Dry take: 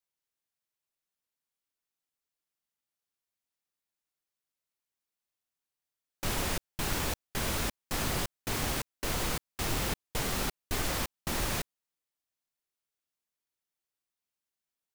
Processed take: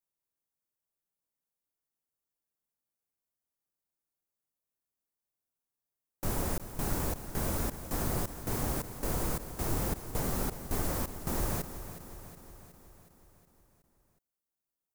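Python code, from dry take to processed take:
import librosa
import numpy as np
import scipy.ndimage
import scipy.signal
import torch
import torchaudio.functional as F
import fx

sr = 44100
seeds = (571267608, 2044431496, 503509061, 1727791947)

y = fx.peak_eq(x, sr, hz=3100.0, db=-14.5, octaves=2.1)
y = fx.echo_feedback(y, sr, ms=367, feedback_pct=59, wet_db=-12)
y = y * librosa.db_to_amplitude(1.5)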